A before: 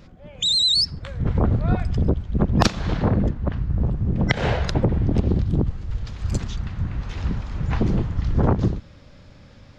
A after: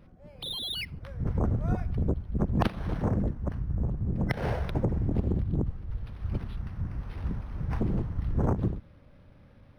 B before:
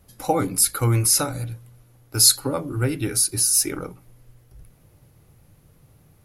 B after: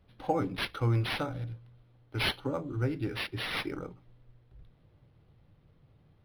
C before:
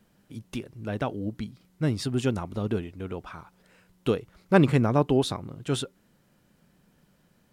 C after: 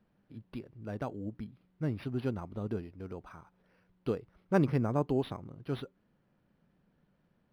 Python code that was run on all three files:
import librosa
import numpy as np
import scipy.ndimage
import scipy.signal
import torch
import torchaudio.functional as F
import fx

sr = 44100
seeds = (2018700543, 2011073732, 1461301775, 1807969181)

y = fx.peak_eq(x, sr, hz=8000.0, db=-6.0, octaves=2.9)
y = np.interp(np.arange(len(y)), np.arange(len(y))[::6], y[::6])
y = y * librosa.db_to_amplitude(-7.5)